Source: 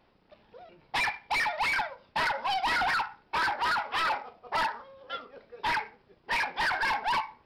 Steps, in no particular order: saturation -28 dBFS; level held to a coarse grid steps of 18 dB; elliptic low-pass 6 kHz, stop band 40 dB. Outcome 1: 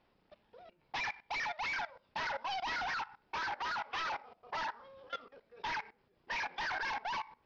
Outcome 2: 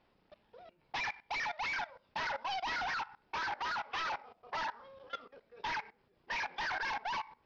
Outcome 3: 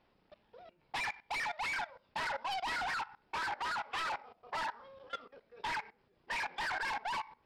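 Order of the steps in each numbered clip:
saturation > level held to a coarse grid > elliptic low-pass; saturation > elliptic low-pass > level held to a coarse grid; elliptic low-pass > saturation > level held to a coarse grid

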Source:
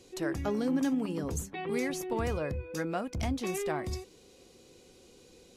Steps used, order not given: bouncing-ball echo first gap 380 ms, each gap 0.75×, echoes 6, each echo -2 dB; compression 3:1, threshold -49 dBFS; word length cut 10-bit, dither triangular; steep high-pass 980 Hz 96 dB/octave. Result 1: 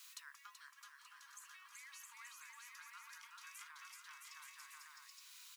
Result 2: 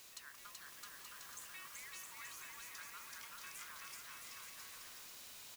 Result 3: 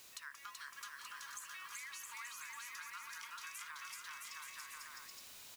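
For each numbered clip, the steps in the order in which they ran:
bouncing-ball echo > word length cut > compression > steep high-pass; compression > steep high-pass > word length cut > bouncing-ball echo; steep high-pass > word length cut > bouncing-ball echo > compression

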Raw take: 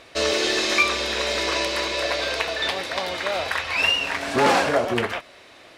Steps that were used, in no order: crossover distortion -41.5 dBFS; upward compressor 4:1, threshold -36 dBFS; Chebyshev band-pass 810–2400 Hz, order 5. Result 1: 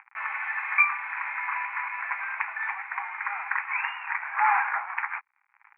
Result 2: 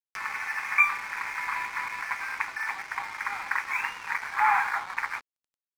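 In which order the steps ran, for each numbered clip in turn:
crossover distortion > upward compressor > Chebyshev band-pass; Chebyshev band-pass > crossover distortion > upward compressor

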